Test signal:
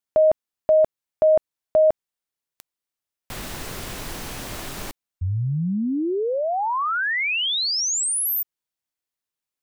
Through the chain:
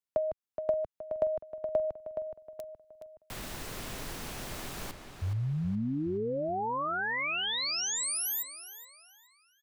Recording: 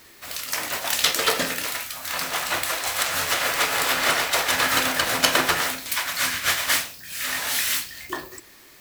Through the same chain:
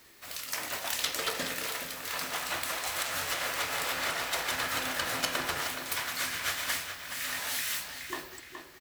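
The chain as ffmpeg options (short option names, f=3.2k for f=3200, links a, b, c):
-filter_complex "[0:a]acrossover=split=120[a][b];[b]acompressor=threshold=-24dB:ratio=10:attack=59:release=320:knee=2.83:detection=peak[c];[a][c]amix=inputs=2:normalize=0,asplit=2[d][e];[e]adelay=421,lowpass=f=4.6k:p=1,volume=-7.5dB,asplit=2[f][g];[g]adelay=421,lowpass=f=4.6k:p=1,volume=0.48,asplit=2[h][i];[i]adelay=421,lowpass=f=4.6k:p=1,volume=0.48,asplit=2[j][k];[k]adelay=421,lowpass=f=4.6k:p=1,volume=0.48,asplit=2[l][m];[m]adelay=421,lowpass=f=4.6k:p=1,volume=0.48,asplit=2[n][o];[o]adelay=421,lowpass=f=4.6k:p=1,volume=0.48[p];[f][h][j][l][n][p]amix=inputs=6:normalize=0[q];[d][q]amix=inputs=2:normalize=0,volume=-7.5dB"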